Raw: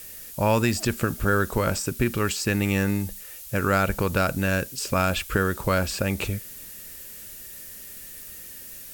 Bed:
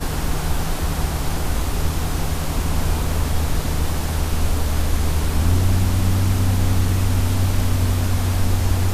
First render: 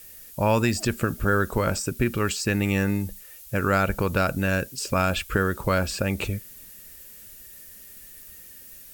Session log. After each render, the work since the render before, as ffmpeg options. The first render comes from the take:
ffmpeg -i in.wav -af "afftdn=noise_reduction=6:noise_floor=-41" out.wav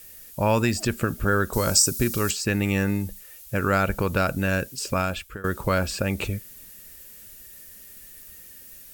ffmpeg -i in.wav -filter_complex "[0:a]asettb=1/sr,asplit=3[link_01][link_02][link_03];[link_01]atrim=end=1.534[link_04];[link_02]atrim=start=1.53:end=2.31,asetpts=PTS-STARTPTS,afade=type=in:duration=0.004:curve=qsin,afade=type=out:start_time=0.776:duration=0.004:curve=qsin,highshelf=frequency=3700:width_type=q:width=1.5:gain=11.5[link_05];[link_03]atrim=start=2.306[link_06];[link_04][link_05]acrossfade=duration=0.004:curve1=hsin:curve2=qsin[link_07];[link_07][link_06]acrossfade=duration=0.004:curve1=qsin:curve2=hsin,asplit=2[link_08][link_09];[link_08]atrim=end=5.44,asetpts=PTS-STARTPTS,afade=type=out:start_time=4.88:duration=0.56:silence=0.0891251[link_10];[link_09]atrim=start=5.44,asetpts=PTS-STARTPTS,afade=type=in:duration=0.004:curve=hsin:silence=0.0891251[link_11];[link_10][link_11]concat=n=2:v=0:a=1" out.wav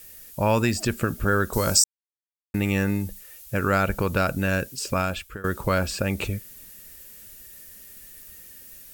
ffmpeg -i in.wav -filter_complex "[0:a]asplit=3[link_01][link_02][link_03];[link_01]atrim=end=1.84,asetpts=PTS-STARTPTS,afade=type=out:start_time=1.836:duration=0.004:curve=hsin[link_04];[link_02]atrim=start=1.84:end=2.54,asetpts=PTS-STARTPTS,volume=0[link_05];[link_03]atrim=start=2.54,asetpts=PTS-STARTPTS,afade=type=in:duration=0.004:curve=hsin[link_06];[link_04][link_05][link_06]concat=n=3:v=0:a=1" out.wav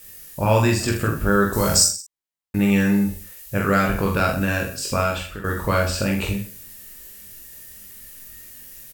ffmpeg -i in.wav -filter_complex "[0:a]asplit=2[link_01][link_02];[link_02]adelay=45,volume=-4dB[link_03];[link_01][link_03]amix=inputs=2:normalize=0,aecho=1:1:20|46|79.8|123.7|180.9:0.631|0.398|0.251|0.158|0.1" out.wav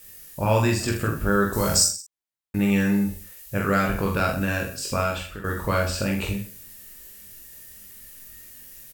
ffmpeg -i in.wav -af "volume=-3dB" out.wav

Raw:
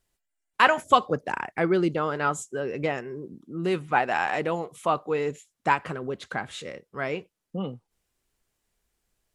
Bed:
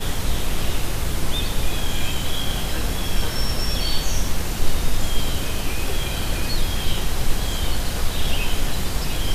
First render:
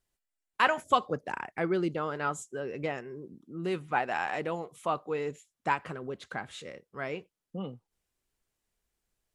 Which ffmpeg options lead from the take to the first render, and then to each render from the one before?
ffmpeg -i in.wav -af "volume=-6dB" out.wav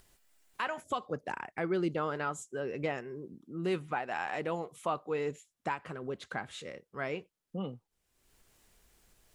ffmpeg -i in.wav -af "alimiter=limit=-21dB:level=0:latency=1:release=386,acompressor=mode=upward:threshold=-50dB:ratio=2.5" out.wav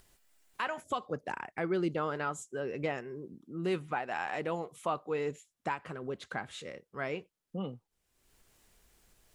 ffmpeg -i in.wav -af anull out.wav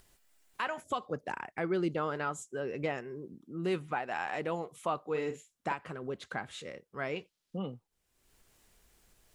ffmpeg -i in.wav -filter_complex "[0:a]asettb=1/sr,asplit=3[link_01][link_02][link_03];[link_01]atrim=end=5.104[link_04];[link_02]atrim=start=5.1:end=5.73,asetpts=PTS-STARTPTS,afade=type=in:duration=0.004:curve=qsin,afade=type=out:start_time=0.626:duration=0.004:curve=qsin,asplit=2[link_05][link_06];[link_06]adelay=45,volume=-8dB[link_07];[link_05][link_07]amix=inputs=2:normalize=0,atrim=end_sample=27783[link_08];[link_03]atrim=start=5.726[link_09];[link_04][link_08]acrossfade=duration=0.004:curve1=hsin:curve2=qsin[link_10];[link_10][link_09]acrossfade=duration=0.004:curve1=qsin:curve2=hsin,asettb=1/sr,asplit=3[link_11][link_12][link_13];[link_11]atrim=end=7.164[link_14];[link_12]atrim=start=7.16:end=7.58,asetpts=PTS-STARTPTS,afade=type=in:duration=0.004:curve=qsin,afade=type=out:start_time=0.416:duration=0.004:curve=qsin,equalizer=frequency=4200:width_type=o:width=1.7:gain=9.5[link_15];[link_13]atrim=start=7.576[link_16];[link_14][link_15]acrossfade=duration=0.004:curve1=hsin:curve2=qsin[link_17];[link_17][link_16]acrossfade=duration=0.004:curve1=qsin:curve2=hsin" out.wav

